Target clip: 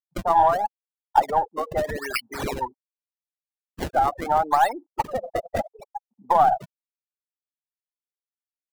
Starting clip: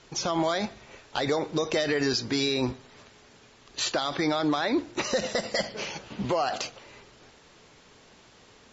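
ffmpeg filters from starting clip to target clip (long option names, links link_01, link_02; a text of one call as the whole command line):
ffmpeg -i in.wav -filter_complex "[0:a]afftfilt=real='re*gte(hypot(re,im),0.0891)':imag='im*gte(hypot(re,im),0.0891)':win_size=1024:overlap=0.75,highpass=frequency=850:width_type=q:width=6.4,acrossover=split=1600[link_01][link_02];[link_02]acrusher=samples=30:mix=1:aa=0.000001:lfo=1:lforange=48:lforate=0.79[link_03];[link_01][link_03]amix=inputs=2:normalize=0,aeval=exprs='0.473*(cos(1*acos(clip(val(0)/0.473,-1,1)))-cos(1*PI/2))+0.00944*(cos(8*acos(clip(val(0)/0.473,-1,1)))-cos(8*PI/2))':channel_layout=same,volume=3.5dB" out.wav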